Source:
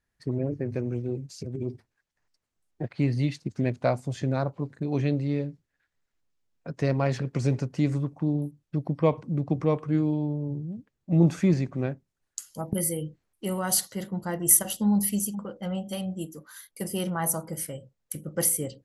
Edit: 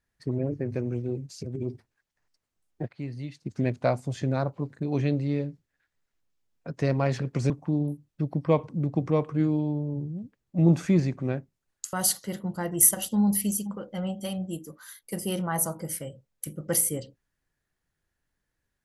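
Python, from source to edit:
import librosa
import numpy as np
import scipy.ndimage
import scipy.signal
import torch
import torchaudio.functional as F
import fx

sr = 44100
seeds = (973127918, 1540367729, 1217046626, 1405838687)

y = fx.edit(x, sr, fx.fade_down_up(start_s=2.82, length_s=0.7, db=-10.5, fade_s=0.13),
    fx.cut(start_s=7.5, length_s=0.54),
    fx.cut(start_s=12.47, length_s=1.14), tone=tone)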